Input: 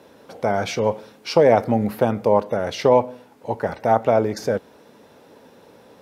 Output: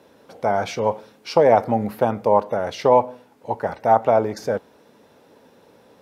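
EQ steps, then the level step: dynamic EQ 890 Hz, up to +7 dB, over -30 dBFS, Q 1.1; -3.5 dB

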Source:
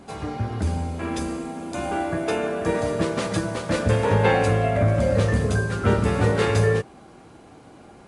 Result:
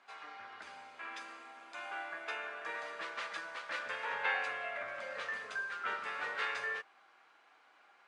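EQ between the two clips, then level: ladder band-pass 2000 Hz, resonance 20%; +3.5 dB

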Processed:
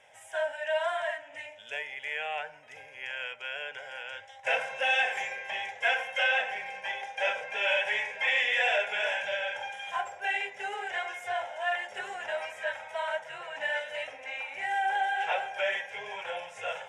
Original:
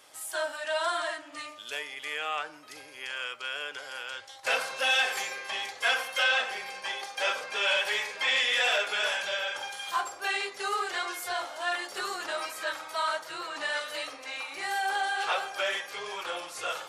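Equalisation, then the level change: air absorption 110 m; fixed phaser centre 1200 Hz, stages 6; +3.0 dB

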